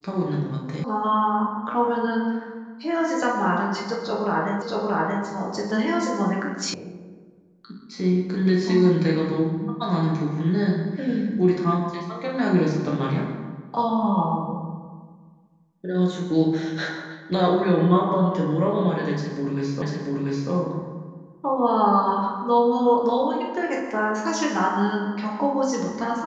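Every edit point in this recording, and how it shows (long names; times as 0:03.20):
0:00.84: cut off before it has died away
0:04.62: the same again, the last 0.63 s
0:06.74: cut off before it has died away
0:19.82: the same again, the last 0.69 s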